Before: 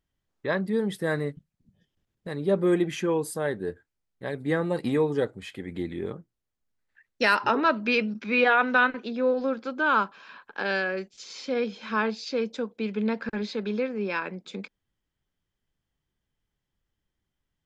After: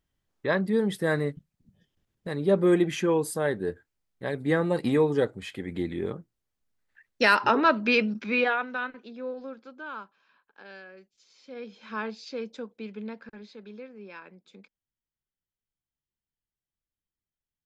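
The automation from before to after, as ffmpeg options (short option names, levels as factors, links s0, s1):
-af "volume=4.73,afade=t=out:st=8.15:d=0.52:silence=0.237137,afade=t=out:st=9.29:d=0.87:silence=0.398107,afade=t=in:st=11.38:d=0.61:silence=0.251189,afade=t=out:st=12.64:d=0.74:silence=0.398107"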